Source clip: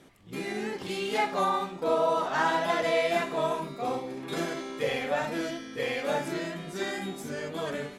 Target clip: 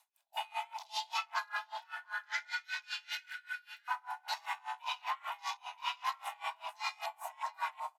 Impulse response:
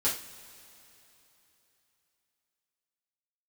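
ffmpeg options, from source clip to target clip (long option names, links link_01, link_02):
-filter_complex "[0:a]highpass=240,aemphasis=mode=production:type=75fm,afwtdn=0.0126,aecho=1:1:2:0.4,acompressor=threshold=-31dB:ratio=6,afreqshift=480,asettb=1/sr,asplit=3[link_01][link_02][link_03];[link_01]atrim=end=1.784[link_04];[link_02]atrim=start=1.78:end=3.88,asetpts=PTS-STARTPTS,afade=type=in:duration=0.004:curve=qsin,afade=type=out:start_time=2.096:duration=0.004:curve=qsin,asuperstop=centerf=660:order=20:qfactor=0.58[link_05];[link_03]atrim=start=3.876[link_06];[link_04][link_05]acrossfade=duration=0.004:curve1=hsin:curve2=qsin[link_07];[link_07][link_06]acrossfade=duration=0.004:curve1=qsin:curve2=hsin,asplit=2[link_08][link_09];[link_09]adelay=698,lowpass=frequency=2000:poles=1,volume=-5.5dB,asplit=2[link_10][link_11];[link_11]adelay=698,lowpass=frequency=2000:poles=1,volume=0.36,asplit=2[link_12][link_13];[link_13]adelay=698,lowpass=frequency=2000:poles=1,volume=0.36,asplit=2[link_14][link_15];[link_15]adelay=698,lowpass=frequency=2000:poles=1,volume=0.36[link_16];[link_08][link_10][link_12][link_14][link_16]amix=inputs=5:normalize=0,aeval=exprs='val(0)*pow(10,-28*(0.5-0.5*cos(2*PI*5.1*n/s))/20)':channel_layout=same,volume=1.5dB"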